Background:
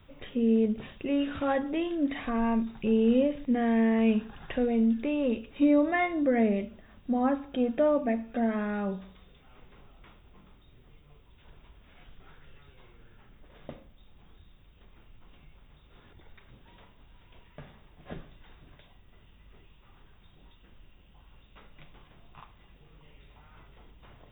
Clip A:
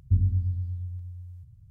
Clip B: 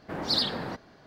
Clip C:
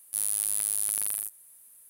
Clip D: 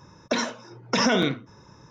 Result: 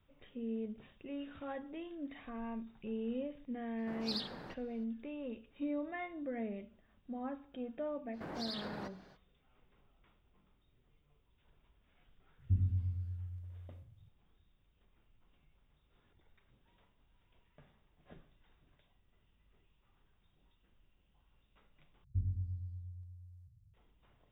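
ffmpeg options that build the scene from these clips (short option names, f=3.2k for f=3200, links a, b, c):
-filter_complex "[2:a]asplit=2[a][b];[1:a]asplit=2[c][d];[0:a]volume=-15.5dB[e];[b]acompressor=threshold=-33dB:ratio=4:attack=0.11:release=117:knee=1:detection=peak[f];[c]highpass=78[g];[d]equalizer=f=220:w=4.5:g=-5[h];[e]asplit=2[i][j];[i]atrim=end=22.044[k];[h]atrim=end=1.7,asetpts=PTS-STARTPTS,volume=-13dB[l];[j]atrim=start=23.736[m];[a]atrim=end=1.06,asetpts=PTS-STARTPTS,volume=-14dB,afade=t=in:d=0.004:c=hsin,afade=t=out:st=1.056:d=0.004:c=hsin,adelay=3780[n];[f]atrim=end=1.06,asetpts=PTS-STARTPTS,volume=-5.5dB,afade=t=in:d=0.05,afade=t=out:st=1.01:d=0.05,adelay=8120[o];[g]atrim=end=1.7,asetpts=PTS-STARTPTS,volume=-7dB,afade=t=in:d=0.004:c=hsin,afade=t=out:st=1.696:d=0.004:c=hsin,adelay=12390[p];[k][l]acrossfade=d=0.004:c1=hsin:c2=hsin[q];[q][m]acrossfade=d=0.004:c1=hsin:c2=hsin[r];[r][n][o][p]amix=inputs=4:normalize=0"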